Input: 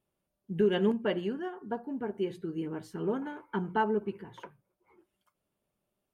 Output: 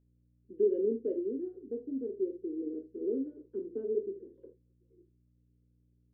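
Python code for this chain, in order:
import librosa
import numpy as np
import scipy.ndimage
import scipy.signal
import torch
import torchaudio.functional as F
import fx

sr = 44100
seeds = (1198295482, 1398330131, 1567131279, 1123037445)

y = scipy.signal.sosfilt(scipy.signal.ellip(3, 1.0, 40, [250.0, 500.0], 'bandpass', fs=sr, output='sos'), x)
y = fx.add_hum(y, sr, base_hz=60, snr_db=33)
y = fx.room_early_taps(y, sr, ms=(26, 49, 76), db=(-9.0, -11.0, -15.5))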